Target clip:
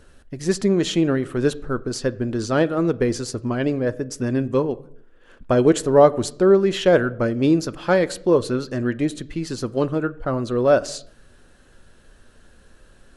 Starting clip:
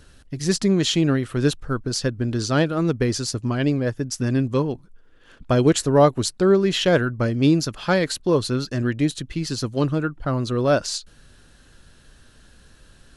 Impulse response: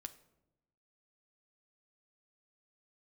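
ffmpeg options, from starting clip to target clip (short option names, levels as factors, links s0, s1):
-filter_complex "[0:a]equalizer=f=125:t=o:w=1:g=-5,equalizer=f=500:t=o:w=1:g=4,equalizer=f=8000:t=o:w=1:g=4,asplit=2[s0][s1];[1:a]atrim=start_sample=2205,afade=t=out:st=0.38:d=0.01,atrim=end_sample=17199,lowpass=2900[s2];[s1][s2]afir=irnorm=-1:irlink=0,volume=1.88[s3];[s0][s3]amix=inputs=2:normalize=0,volume=0.501"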